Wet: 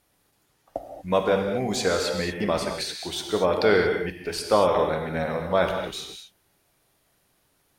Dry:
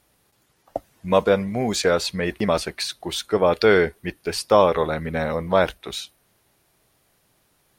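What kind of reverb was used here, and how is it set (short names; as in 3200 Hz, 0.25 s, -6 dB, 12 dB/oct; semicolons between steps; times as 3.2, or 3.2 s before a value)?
non-linear reverb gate 0.26 s flat, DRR 3 dB; gain -4.5 dB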